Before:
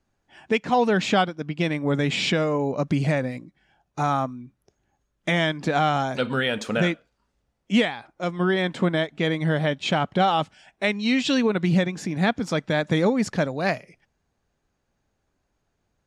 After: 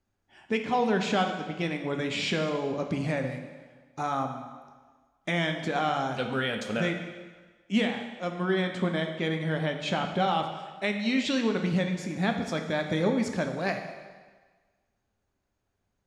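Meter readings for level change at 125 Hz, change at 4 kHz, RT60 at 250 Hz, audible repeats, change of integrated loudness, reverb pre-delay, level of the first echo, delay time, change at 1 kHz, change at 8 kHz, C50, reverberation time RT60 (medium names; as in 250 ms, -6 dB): -6.5 dB, -5.0 dB, 1.3 s, no echo, -5.5 dB, 6 ms, no echo, no echo, -5.0 dB, -5.5 dB, 6.5 dB, 1.4 s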